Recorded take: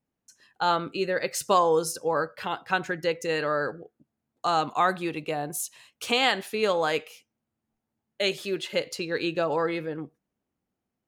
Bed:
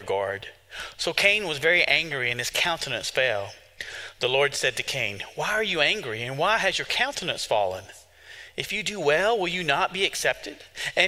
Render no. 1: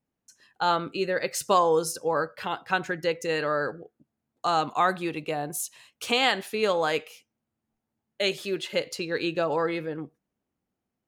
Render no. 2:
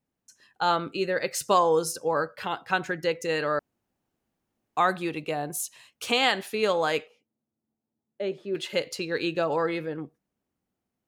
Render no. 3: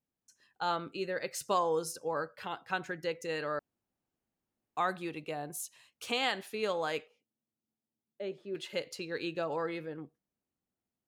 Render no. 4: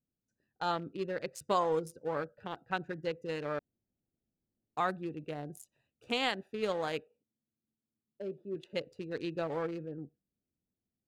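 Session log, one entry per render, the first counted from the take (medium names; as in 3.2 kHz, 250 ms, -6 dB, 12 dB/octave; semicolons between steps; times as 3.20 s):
no audible change
3.59–4.77 s: room tone; 7.06–8.55 s: band-pass filter 300 Hz, Q 0.71
trim -8.5 dB
local Wiener filter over 41 samples; bass shelf 230 Hz +5 dB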